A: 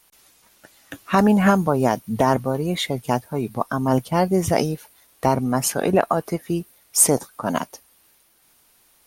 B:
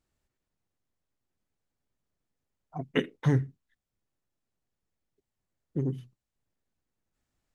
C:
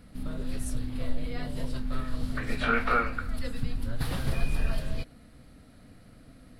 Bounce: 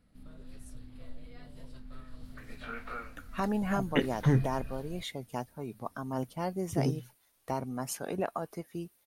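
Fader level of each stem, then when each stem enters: -15.0, -0.5, -15.5 dB; 2.25, 1.00, 0.00 s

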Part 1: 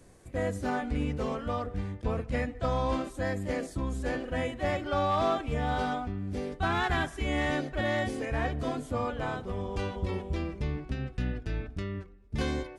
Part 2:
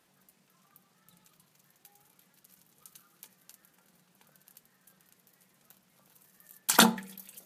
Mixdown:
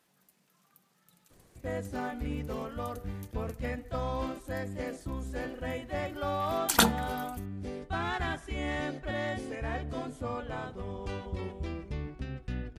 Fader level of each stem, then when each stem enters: -4.5, -2.5 dB; 1.30, 0.00 s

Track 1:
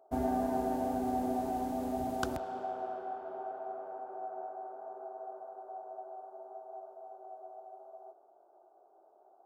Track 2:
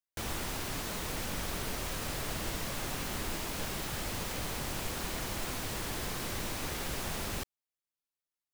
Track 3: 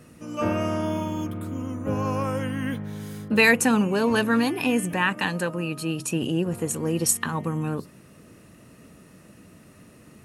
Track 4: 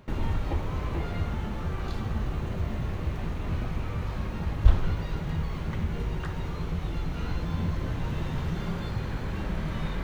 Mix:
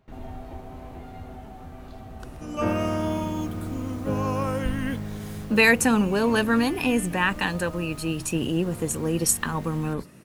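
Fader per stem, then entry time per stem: -11.0, -14.5, 0.0, -12.0 dB; 0.00, 2.50, 2.20, 0.00 s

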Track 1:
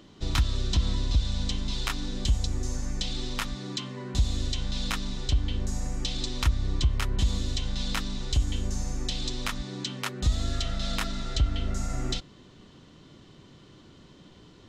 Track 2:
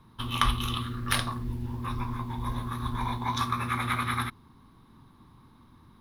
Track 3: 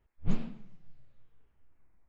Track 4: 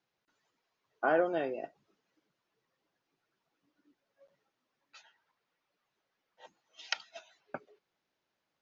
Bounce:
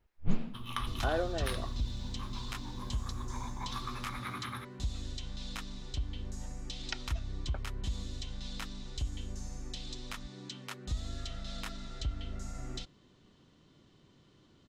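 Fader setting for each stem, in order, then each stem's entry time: -11.0, -12.0, -0.5, -5.0 dB; 0.65, 0.35, 0.00, 0.00 s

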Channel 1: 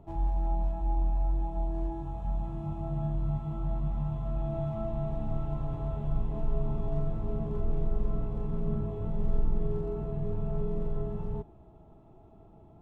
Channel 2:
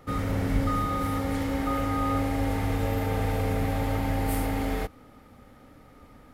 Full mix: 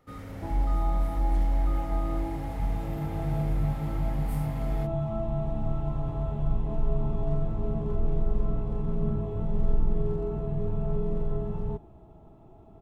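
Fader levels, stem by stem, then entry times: +3.0, -12.5 dB; 0.35, 0.00 s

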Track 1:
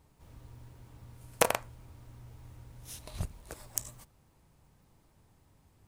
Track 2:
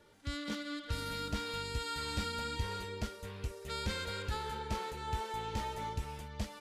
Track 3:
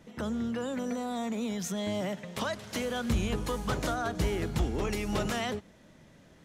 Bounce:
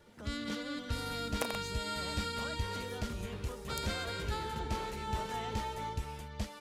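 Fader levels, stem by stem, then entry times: -12.0, +0.5, -14.0 dB; 0.00, 0.00, 0.00 s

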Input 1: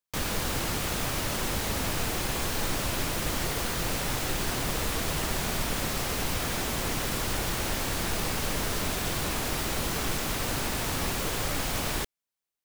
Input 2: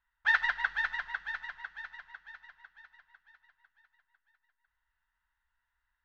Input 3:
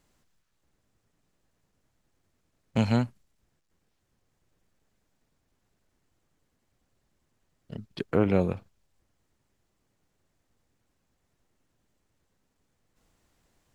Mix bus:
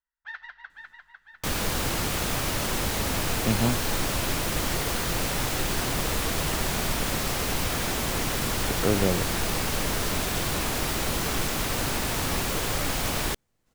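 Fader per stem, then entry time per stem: +2.5, -13.5, -1.0 dB; 1.30, 0.00, 0.70 s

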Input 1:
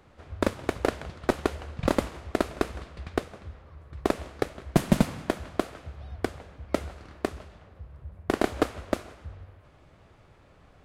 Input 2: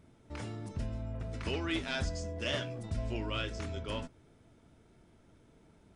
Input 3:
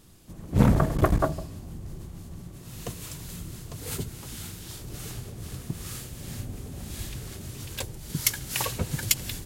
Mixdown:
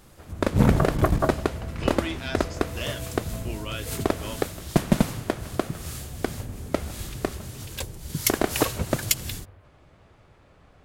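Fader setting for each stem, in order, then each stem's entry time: +1.0, +2.0, +0.5 dB; 0.00, 0.35, 0.00 s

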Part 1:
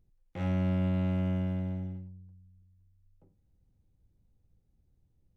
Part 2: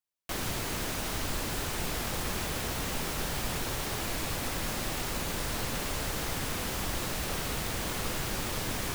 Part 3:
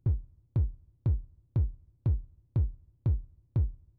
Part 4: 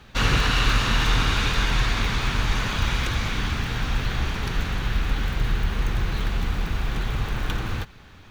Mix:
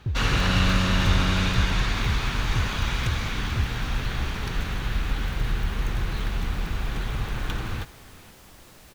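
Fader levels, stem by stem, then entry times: +2.5, -16.5, -0.5, -2.5 dB; 0.00, 1.65, 0.00, 0.00 s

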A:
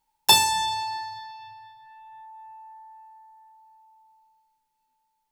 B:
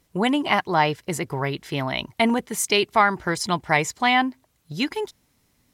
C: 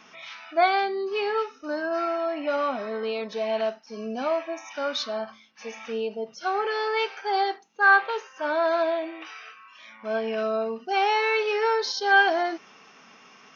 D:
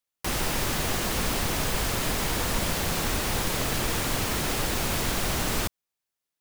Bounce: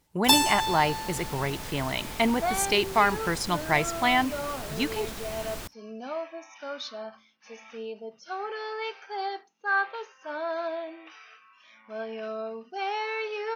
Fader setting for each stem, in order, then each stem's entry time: -3.5, -4.0, -8.0, -11.5 dB; 0.00, 0.00, 1.85, 0.00 s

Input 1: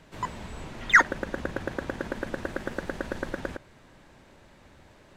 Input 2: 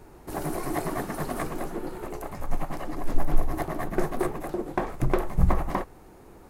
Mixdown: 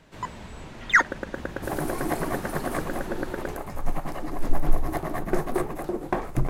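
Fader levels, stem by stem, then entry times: -1.0, +1.0 dB; 0.00, 1.35 s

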